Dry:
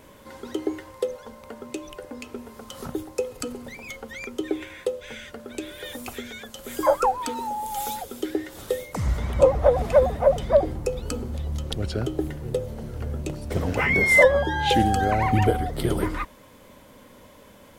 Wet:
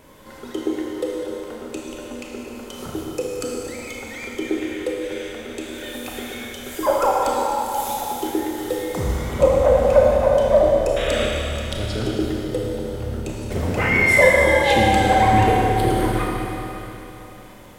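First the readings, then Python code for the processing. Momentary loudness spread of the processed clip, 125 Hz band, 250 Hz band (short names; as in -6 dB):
17 LU, +2.5 dB, +5.0 dB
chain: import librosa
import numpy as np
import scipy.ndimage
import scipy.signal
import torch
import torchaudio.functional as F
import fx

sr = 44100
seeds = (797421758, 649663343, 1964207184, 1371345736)

y = fx.spec_paint(x, sr, seeds[0], shape='noise', start_s=10.96, length_s=0.3, low_hz=1100.0, high_hz=3900.0, level_db=-31.0)
y = fx.rev_schroeder(y, sr, rt60_s=3.3, comb_ms=25, drr_db=-3.0)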